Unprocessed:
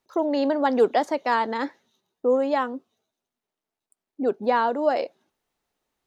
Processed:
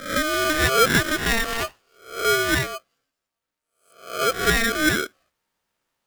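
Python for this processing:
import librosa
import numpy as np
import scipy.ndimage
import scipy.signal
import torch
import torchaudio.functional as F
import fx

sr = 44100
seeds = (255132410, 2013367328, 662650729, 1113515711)

y = fx.spec_swells(x, sr, rise_s=0.5)
y = y * np.sign(np.sin(2.0 * np.pi * 920.0 * np.arange(len(y)) / sr))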